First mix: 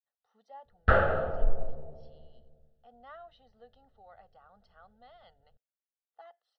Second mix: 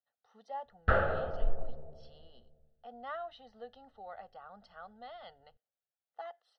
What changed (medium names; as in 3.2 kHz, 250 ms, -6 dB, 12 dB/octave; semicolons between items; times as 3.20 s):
speech +8.0 dB; background -4.5 dB